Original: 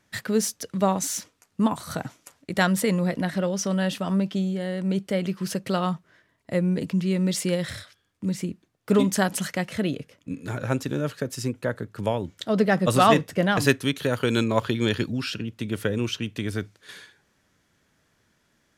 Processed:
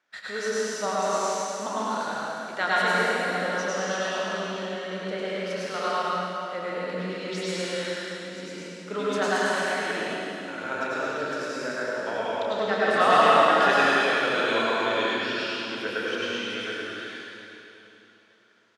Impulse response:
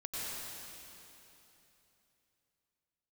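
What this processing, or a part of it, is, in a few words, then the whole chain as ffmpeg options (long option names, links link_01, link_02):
station announcement: -filter_complex "[0:a]highpass=490,lowpass=4600,equalizer=frequency=1400:width_type=o:width=0.27:gain=6.5,aecho=1:1:29.15|105:0.355|0.794[link_01];[1:a]atrim=start_sample=2205[link_02];[link_01][link_02]afir=irnorm=-1:irlink=0,volume=-1.5dB"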